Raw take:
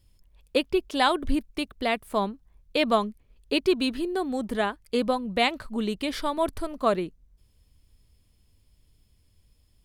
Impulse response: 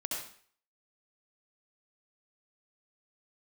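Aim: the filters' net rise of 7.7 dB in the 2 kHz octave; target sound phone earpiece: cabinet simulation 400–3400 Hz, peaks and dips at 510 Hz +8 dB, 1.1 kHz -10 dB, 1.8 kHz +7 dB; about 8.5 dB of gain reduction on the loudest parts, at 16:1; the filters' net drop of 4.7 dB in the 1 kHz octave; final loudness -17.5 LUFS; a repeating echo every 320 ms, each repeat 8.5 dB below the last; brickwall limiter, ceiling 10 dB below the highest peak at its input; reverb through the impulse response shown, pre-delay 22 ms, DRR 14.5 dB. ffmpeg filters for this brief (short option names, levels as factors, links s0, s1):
-filter_complex "[0:a]equalizer=f=1000:t=o:g=-5.5,equalizer=f=2000:t=o:g=7.5,acompressor=threshold=0.0562:ratio=16,alimiter=limit=0.075:level=0:latency=1,aecho=1:1:320|640|960|1280:0.376|0.143|0.0543|0.0206,asplit=2[s0][s1];[1:a]atrim=start_sample=2205,adelay=22[s2];[s1][s2]afir=irnorm=-1:irlink=0,volume=0.141[s3];[s0][s3]amix=inputs=2:normalize=0,highpass=400,equalizer=f=510:t=q:w=4:g=8,equalizer=f=1100:t=q:w=4:g=-10,equalizer=f=1800:t=q:w=4:g=7,lowpass=f=3400:w=0.5412,lowpass=f=3400:w=1.3066,volume=7.08"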